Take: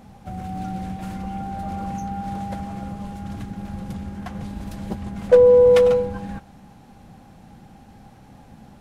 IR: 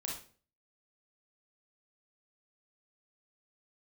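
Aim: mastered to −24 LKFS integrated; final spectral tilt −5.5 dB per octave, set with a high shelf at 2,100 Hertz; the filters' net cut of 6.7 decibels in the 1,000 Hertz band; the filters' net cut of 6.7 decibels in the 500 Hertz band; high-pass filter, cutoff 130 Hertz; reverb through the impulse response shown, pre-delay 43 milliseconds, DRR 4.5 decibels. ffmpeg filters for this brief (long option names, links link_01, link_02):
-filter_complex "[0:a]highpass=130,equalizer=frequency=500:width_type=o:gain=-5.5,equalizer=frequency=1000:width_type=o:gain=-8,highshelf=frequency=2100:gain=6,asplit=2[link_01][link_02];[1:a]atrim=start_sample=2205,adelay=43[link_03];[link_02][link_03]afir=irnorm=-1:irlink=0,volume=-5dB[link_04];[link_01][link_04]amix=inputs=2:normalize=0,volume=3dB"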